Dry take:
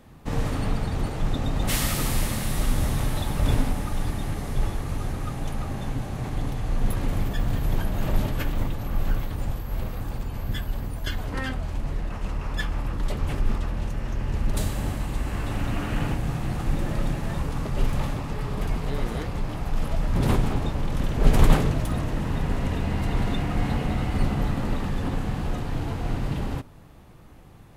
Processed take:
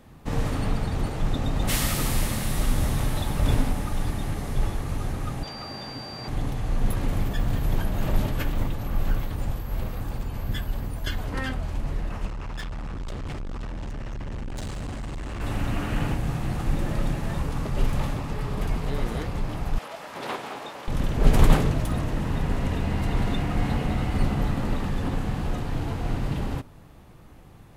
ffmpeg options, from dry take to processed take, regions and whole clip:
ffmpeg -i in.wav -filter_complex "[0:a]asettb=1/sr,asplit=3[link_01][link_02][link_03];[link_01]atrim=end=5.434[link_04];[link_02]atrim=start=5.43:end=6.28,asetpts=PTS-STARTPTS,afade=type=in:duration=0.004:curve=qsin,afade=type=out:start_time=0.846:duration=0.004:curve=qsin,acrossover=split=5900[link_05][link_06];[link_06]acompressor=threshold=-60dB:ratio=4:attack=1:release=60[link_07];[link_05][link_07]amix=inputs=2:normalize=0,highpass=frequency=390:poles=1,aeval=exprs='val(0)+0.0112*sin(2*PI*4700*n/s)':channel_layout=same[link_08];[link_03]atrim=start=6.276[link_09];[link_04][link_08]acrossfade=duration=0.004:curve1=hsin:curve2=qsin[link_10];[link_10][link_09]acrossfade=duration=0.004:curve1=qsin:curve2=hsin,asettb=1/sr,asplit=3[link_11][link_12][link_13];[link_11]atrim=end=12.264[link_14];[link_12]atrim=start=12.26:end=15.41,asetpts=PTS-STARTPTS,afade=type=in:duration=0.004:curve=qsin,afade=type=out:start_time=3.146:duration=0.004:curve=qsin,lowpass=frequency=8500:width=0.5412,lowpass=frequency=8500:width=1.3066,volume=30dB,asoftclip=hard,volume=-30dB[link_15];[link_13]atrim=start=15.406[link_16];[link_14][link_15]acrossfade=duration=0.004:curve1=hsin:curve2=qsin[link_17];[link_17][link_16]acrossfade=duration=0.004:curve1=qsin:curve2=hsin,asettb=1/sr,asplit=3[link_18][link_19][link_20];[link_18]atrim=end=19.784[link_21];[link_19]atrim=start=19.78:end=20.88,asetpts=PTS-STARTPTS,afade=type=in:duration=0.004:curve=qsin,afade=type=out:start_time=1.096:duration=0.004:curve=qsin,highpass=570,acrossover=split=5300[link_22][link_23];[link_23]acompressor=threshold=-52dB:ratio=4:attack=1:release=60[link_24];[link_22][link_24]amix=inputs=2:normalize=0[link_25];[link_20]atrim=start=20.876[link_26];[link_21][link_25]acrossfade=duration=0.004:curve1=hsin:curve2=qsin[link_27];[link_27][link_26]acrossfade=duration=0.004:curve1=qsin:curve2=hsin" out.wav

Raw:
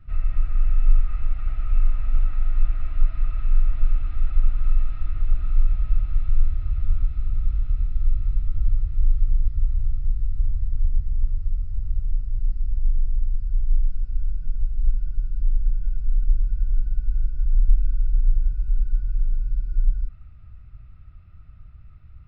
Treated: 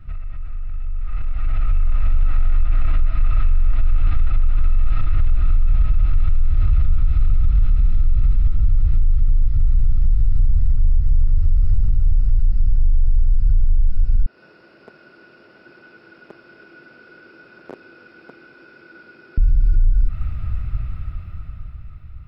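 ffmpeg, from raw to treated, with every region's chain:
ffmpeg -i in.wav -filter_complex "[0:a]asettb=1/sr,asplit=3[link_01][link_02][link_03];[link_01]atrim=end=14.264[link_04];[link_02]atrim=start=14.26:end=19.38,asetpts=PTS-STARTPTS,afade=type=in:duration=0.004:curve=qsin,afade=type=out:start_time=5.116:duration=0.004:curve=qsin,aemphasis=mode=reproduction:type=50fm,volume=8dB,asoftclip=hard,volume=-8dB,highpass=frequency=370:width=0.5412,highpass=frequency=370:width=1.3066[link_05];[link_03]atrim=start=19.376[link_06];[link_04][link_05]acrossfade=duration=0.004:curve1=hsin:curve2=qsin[link_07];[link_07][link_06]acrossfade=duration=0.004:curve1=qsin:curve2=hsin,acompressor=threshold=-25dB:ratio=5,alimiter=level_in=5.5dB:limit=-24dB:level=0:latency=1:release=12,volume=-5.5dB,dynaudnorm=framelen=260:gausssize=11:maxgain=13dB,volume=7.5dB" out.wav

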